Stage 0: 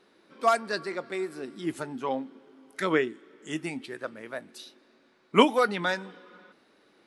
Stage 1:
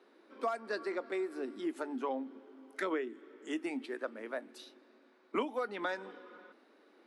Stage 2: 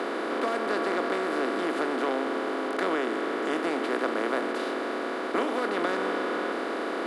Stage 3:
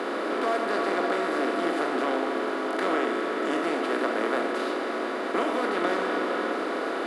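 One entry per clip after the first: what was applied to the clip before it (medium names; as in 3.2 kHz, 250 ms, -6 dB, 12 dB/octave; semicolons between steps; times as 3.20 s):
steep high-pass 230 Hz 48 dB/octave; treble shelf 2.5 kHz -10 dB; compression 6:1, threshold -32 dBFS, peak gain reduction 17 dB
spectral levelling over time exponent 0.2
reverberation RT60 0.70 s, pre-delay 4 ms, DRR 3.5 dB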